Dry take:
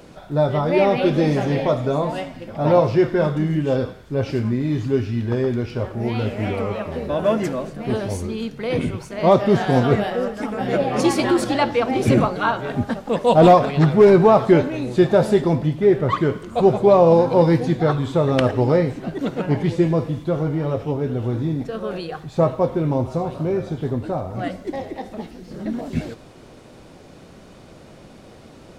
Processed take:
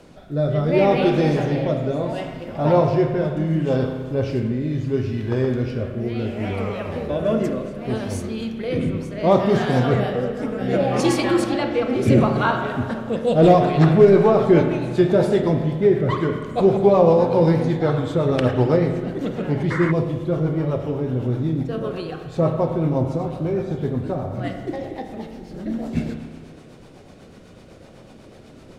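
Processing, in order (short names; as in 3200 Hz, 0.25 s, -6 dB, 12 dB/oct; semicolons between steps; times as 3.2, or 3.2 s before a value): rotary speaker horn 0.7 Hz, later 8 Hz, at 13.76; spring tank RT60 1.7 s, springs 31/40 ms, chirp 25 ms, DRR 5 dB; painted sound noise, 19.7–19.92, 920–2200 Hz -28 dBFS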